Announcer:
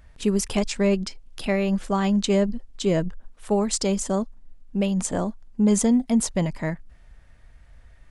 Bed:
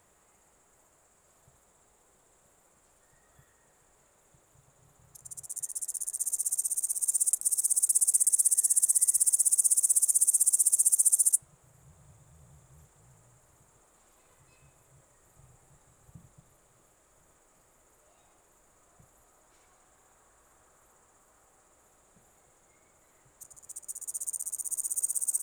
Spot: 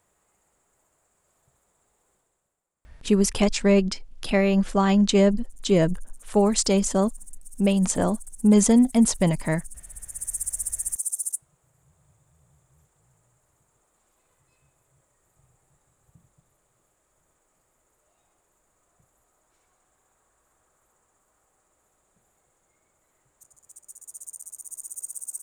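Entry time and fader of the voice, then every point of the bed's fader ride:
2.85 s, +2.5 dB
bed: 2.13 s -4.5 dB
2.68 s -20.5 dB
9.91 s -20.5 dB
10.33 s -5.5 dB

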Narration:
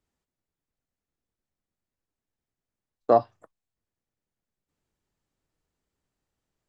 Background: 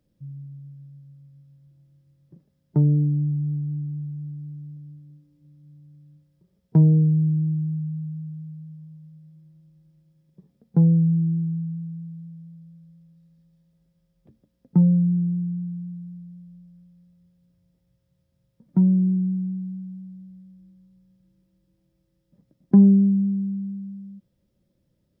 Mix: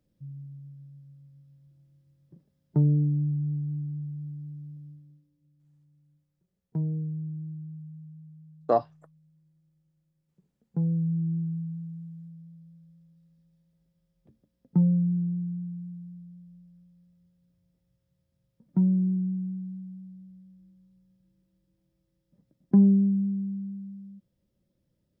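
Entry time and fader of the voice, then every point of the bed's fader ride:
5.60 s, -4.0 dB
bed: 4.88 s -3.5 dB
5.51 s -14 dB
10.45 s -14 dB
11.37 s -5 dB

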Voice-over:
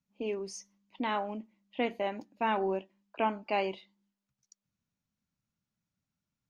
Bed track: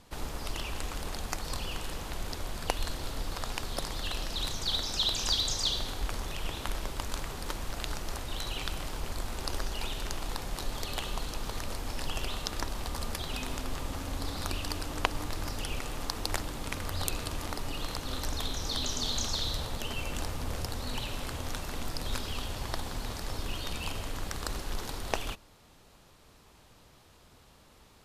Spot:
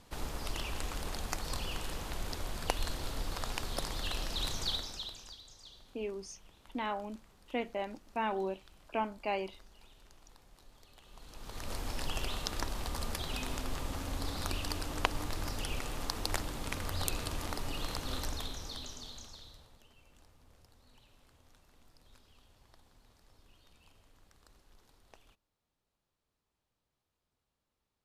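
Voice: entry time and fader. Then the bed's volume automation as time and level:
5.75 s, -4.0 dB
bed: 4.65 s -2 dB
5.4 s -24.5 dB
11 s -24.5 dB
11.74 s -2 dB
18.17 s -2 dB
19.93 s -28 dB

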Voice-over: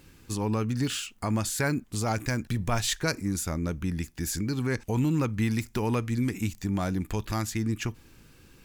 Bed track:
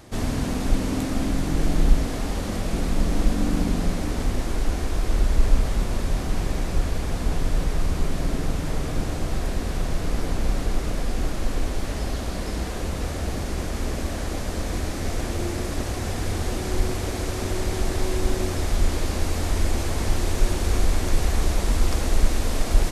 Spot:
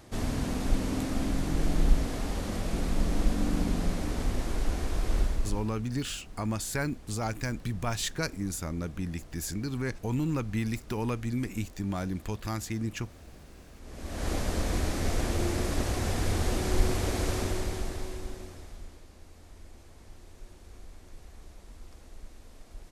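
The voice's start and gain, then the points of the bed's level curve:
5.15 s, -4.0 dB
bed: 5.2 s -5.5 dB
5.82 s -23 dB
13.78 s -23 dB
14.28 s -2 dB
17.34 s -2 dB
19.07 s -27.5 dB

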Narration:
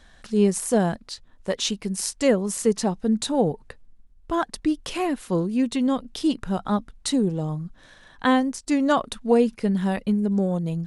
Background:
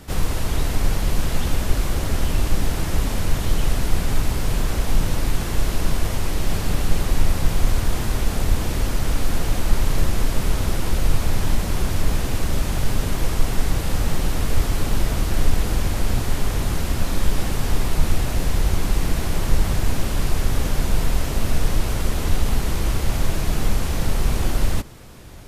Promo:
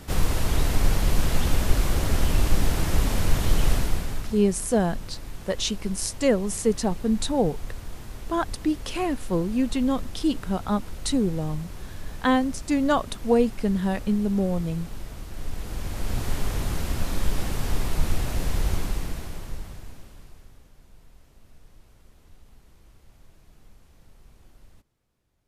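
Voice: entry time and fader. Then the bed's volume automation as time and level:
4.00 s, -1.5 dB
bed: 3.74 s -1 dB
4.45 s -16.5 dB
15.31 s -16.5 dB
16.27 s -5 dB
18.74 s -5 dB
20.7 s -33 dB

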